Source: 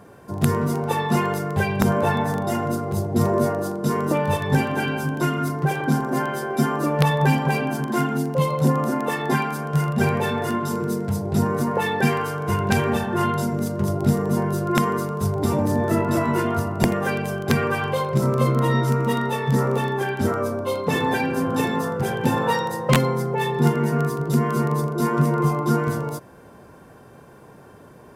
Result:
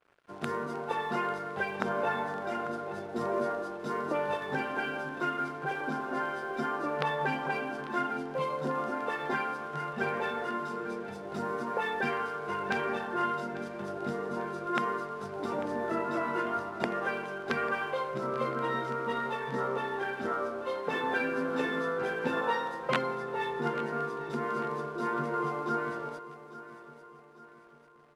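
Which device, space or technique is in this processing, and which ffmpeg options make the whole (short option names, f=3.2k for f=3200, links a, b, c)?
pocket radio on a weak battery: -filter_complex "[0:a]highpass=330,lowpass=4.1k,aeval=exprs='sgn(val(0))*max(abs(val(0))-0.00501,0)':c=same,equalizer=f=1.4k:t=o:w=0.37:g=6,equalizer=f=10k:t=o:w=0.44:g=5,asettb=1/sr,asplit=3[a][b][c];[a]atrim=end=21.144[d];[b]atrim=start=21.14:end=22.41,asetpts=PTS-STARTPTS,afade=t=in:d=0.004:c=qsin,afade=t=out:st=1.266:d=0.004:c=qsin,asplit=2[e][f];[f]adelay=12,volume=-2.5dB[g];[e][g]amix=inputs=2:normalize=0,atrim=end_sample=56007[h];[c]atrim=start=22.406[i];[d][h]acrossfade=d=0.004:c1=hsin:c2=qsin[j];[j][i]acrossfade=d=0.004:c1=qsin:c2=hsin,aecho=1:1:845|1690|2535|3380:0.168|0.0772|0.0355|0.0163,adynamicequalizer=threshold=0.00562:dfrequency=5400:dqfactor=0.7:tfrequency=5400:tqfactor=0.7:attack=5:release=100:ratio=0.375:range=2.5:mode=cutabove:tftype=highshelf,volume=-8dB"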